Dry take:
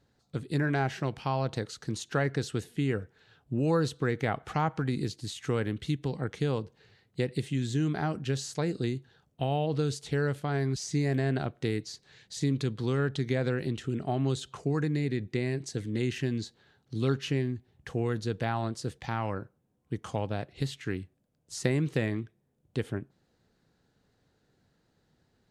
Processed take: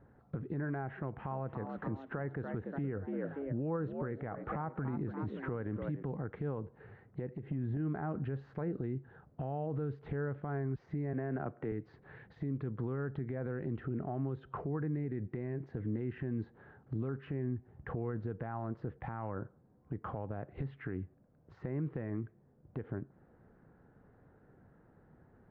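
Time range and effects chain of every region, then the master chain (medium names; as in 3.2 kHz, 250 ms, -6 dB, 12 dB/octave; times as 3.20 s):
0.89–6.03 s: band-stop 4.7 kHz, Q 5.8 + frequency-shifting echo 289 ms, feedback 43%, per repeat +68 Hz, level -14 dB
7.29–7.77 s: peaking EQ 6.8 kHz -7 dB 3 oct + compression 10:1, threshold -39 dBFS
11.13–11.72 s: high-pass 200 Hz 6 dB/octave + peaking EQ 4 kHz -8.5 dB 0.45 oct + three bands compressed up and down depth 40%
whole clip: compression 6:1, threshold -39 dBFS; peak limiter -36 dBFS; low-pass 1.6 kHz 24 dB/octave; trim +8.5 dB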